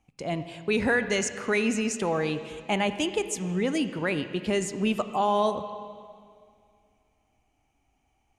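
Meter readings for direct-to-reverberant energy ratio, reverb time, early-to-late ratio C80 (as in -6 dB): 10.0 dB, 2.3 s, 11.5 dB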